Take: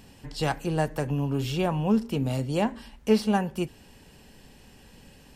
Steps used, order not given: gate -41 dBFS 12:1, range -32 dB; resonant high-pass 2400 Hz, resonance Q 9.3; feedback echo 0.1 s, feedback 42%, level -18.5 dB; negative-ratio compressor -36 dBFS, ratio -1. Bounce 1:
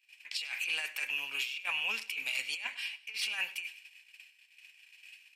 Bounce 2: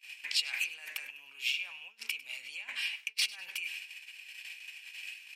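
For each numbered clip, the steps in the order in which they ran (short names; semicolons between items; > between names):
resonant high-pass > negative-ratio compressor > gate > feedback echo; negative-ratio compressor > feedback echo > gate > resonant high-pass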